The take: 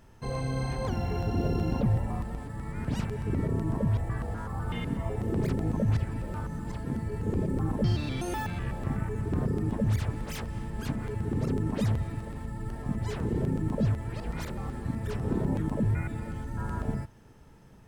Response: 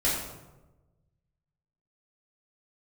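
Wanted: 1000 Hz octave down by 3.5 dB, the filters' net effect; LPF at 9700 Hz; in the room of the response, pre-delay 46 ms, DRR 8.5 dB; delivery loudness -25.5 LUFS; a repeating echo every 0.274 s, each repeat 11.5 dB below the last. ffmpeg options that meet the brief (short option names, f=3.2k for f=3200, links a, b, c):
-filter_complex "[0:a]lowpass=9.7k,equalizer=f=1k:t=o:g=-4.5,aecho=1:1:274|548|822:0.266|0.0718|0.0194,asplit=2[a][b];[1:a]atrim=start_sample=2205,adelay=46[c];[b][c]afir=irnorm=-1:irlink=0,volume=-19dB[d];[a][d]amix=inputs=2:normalize=0,volume=3.5dB"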